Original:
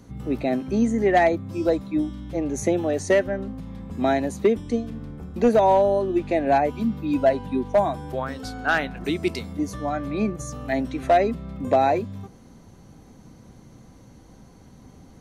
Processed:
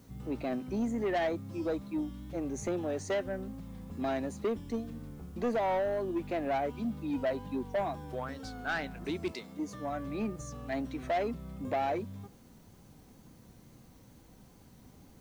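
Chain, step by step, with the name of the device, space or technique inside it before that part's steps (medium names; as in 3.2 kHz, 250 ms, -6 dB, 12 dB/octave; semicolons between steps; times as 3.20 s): 9.31–9.90 s: high-pass 330 Hz -> 86 Hz 12 dB/octave; compact cassette (saturation -17.5 dBFS, distortion -12 dB; low-pass 8 kHz; wow and flutter; white noise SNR 33 dB); trim -8.5 dB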